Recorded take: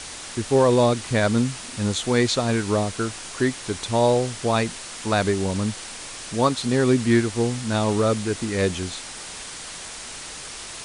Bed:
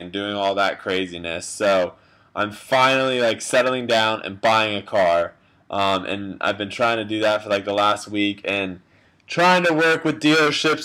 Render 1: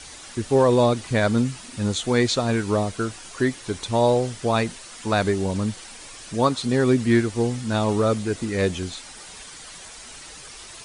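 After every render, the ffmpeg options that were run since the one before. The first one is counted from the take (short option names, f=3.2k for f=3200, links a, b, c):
-af "afftdn=nr=8:nf=-37"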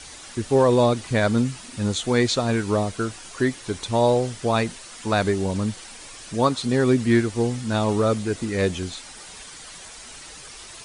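-af anull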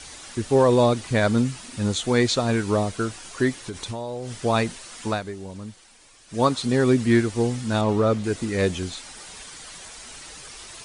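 -filter_complex "[0:a]asettb=1/sr,asplit=3[a][b][c];[a]atrim=end=3.624[d];[b]atrim=start=3.62:end=4.42,asetpts=PTS-STARTPTS,afade=t=in:d=0.004:c=qsin,afade=t=out:st=0.796:d=0.004:c=qsin,acompressor=threshold=-27dB:ratio=16:attack=3.2:release=140:knee=1:detection=peak[e];[c]atrim=start=4.416[f];[d][e]acrossfade=d=0.004:c1=hsin:c2=qsin[g];[g][f]acrossfade=d=0.004:c1=qsin:c2=hsin,asettb=1/sr,asplit=3[h][i][j];[h]atrim=end=7.814[k];[i]atrim=start=7.81:end=8.24,asetpts=PTS-STARTPTS,afade=t=in:d=0.004:c=qsin,afade=t=out:st=0.426:d=0.004:c=qsin,aemphasis=mode=reproduction:type=50fm[l];[j]atrim=start=8.236[m];[k][l]acrossfade=d=0.004:c1=hsin:c2=qsin[n];[n][m]acrossfade=d=0.004:c1=qsin:c2=hsin,asplit=3[o][p][q];[o]atrim=end=5.21,asetpts=PTS-STARTPTS,afade=t=out:st=5.07:d=0.14:silence=0.251189[r];[p]atrim=start=5.21:end=6.28,asetpts=PTS-STARTPTS,volume=-12dB[s];[q]atrim=start=6.28,asetpts=PTS-STARTPTS,afade=t=in:d=0.14:silence=0.251189[t];[r][s][t]concat=n=3:v=0:a=1"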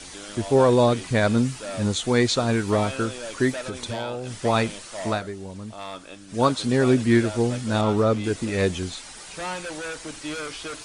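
-filter_complex "[1:a]volume=-16.5dB[a];[0:a][a]amix=inputs=2:normalize=0"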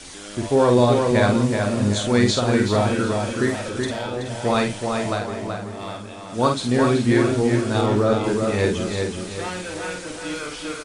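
-filter_complex "[0:a]asplit=2[a][b];[b]adelay=49,volume=-5dB[c];[a][c]amix=inputs=2:normalize=0,asplit=2[d][e];[e]adelay=376,lowpass=f=3.2k:p=1,volume=-4dB,asplit=2[f][g];[g]adelay=376,lowpass=f=3.2k:p=1,volume=0.42,asplit=2[h][i];[i]adelay=376,lowpass=f=3.2k:p=1,volume=0.42,asplit=2[j][k];[k]adelay=376,lowpass=f=3.2k:p=1,volume=0.42,asplit=2[l][m];[m]adelay=376,lowpass=f=3.2k:p=1,volume=0.42[n];[d][f][h][j][l][n]amix=inputs=6:normalize=0"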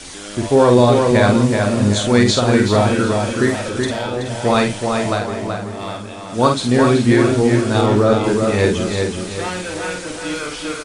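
-af "volume=5dB,alimiter=limit=-2dB:level=0:latency=1"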